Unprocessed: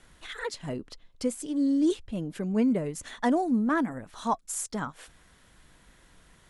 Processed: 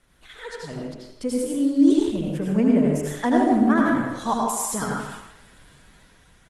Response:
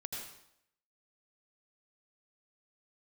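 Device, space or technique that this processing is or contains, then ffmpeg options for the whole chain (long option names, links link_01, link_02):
speakerphone in a meeting room: -filter_complex "[0:a]asettb=1/sr,asplit=3[link_01][link_02][link_03];[link_01]atrim=end=2.204[link_04];[link_02]atrim=start=2.2:end=3.34,asetpts=PTS-STARTPTS,afade=type=in:duration=0.004:curve=qsin,afade=type=out:start_time=1.136:duration=0.004:curve=qsin,equalizer=frequency=125:width_type=o:width=0.33:gain=4,equalizer=frequency=4000:width_type=o:width=0.33:gain=-7,equalizer=frequency=10000:width_type=o:width=0.33:gain=-3[link_05];[link_03]atrim=start=3.336[link_06];[link_04][link_05]acrossfade=duration=0.004:curve1=hsin:curve2=qsin[link_07];[link_07][link_06]acrossfade=duration=0.004:curve1=qsin:curve2=hsin[link_08];[1:a]atrim=start_sample=2205[link_09];[link_08][link_09]afir=irnorm=-1:irlink=0,asplit=2[link_10][link_11];[link_11]adelay=170,highpass=300,lowpass=3400,asoftclip=type=hard:threshold=-23dB,volume=-9dB[link_12];[link_10][link_12]amix=inputs=2:normalize=0,dynaudnorm=framelen=330:gausssize=7:maxgain=7.5dB" -ar 48000 -c:a libopus -b:a 20k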